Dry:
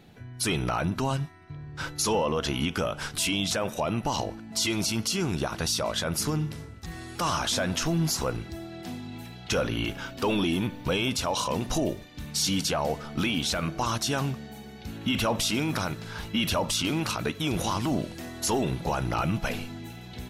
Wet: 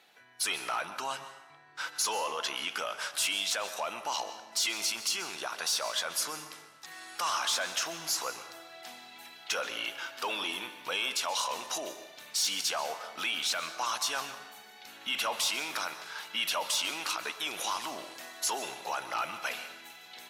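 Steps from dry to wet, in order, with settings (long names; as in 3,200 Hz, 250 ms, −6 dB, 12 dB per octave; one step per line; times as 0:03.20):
high-pass filter 880 Hz 12 dB per octave
sine wavefolder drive 4 dB, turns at −14 dBFS
dense smooth reverb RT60 0.93 s, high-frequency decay 0.75×, pre-delay 115 ms, DRR 11 dB
level −8.5 dB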